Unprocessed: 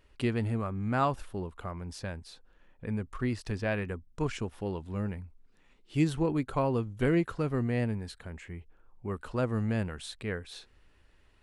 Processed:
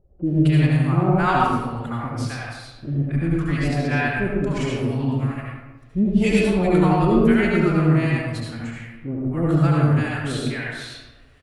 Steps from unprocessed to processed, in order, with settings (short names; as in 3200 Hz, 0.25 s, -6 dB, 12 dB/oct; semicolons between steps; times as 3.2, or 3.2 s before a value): dynamic EQ 1300 Hz, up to +5 dB, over -58 dBFS, Q 8; formant-preserving pitch shift +5 st; bands offset in time lows, highs 0.26 s, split 620 Hz; reverb RT60 1.2 s, pre-delay 64 ms, DRR -4 dB; gain +6.5 dB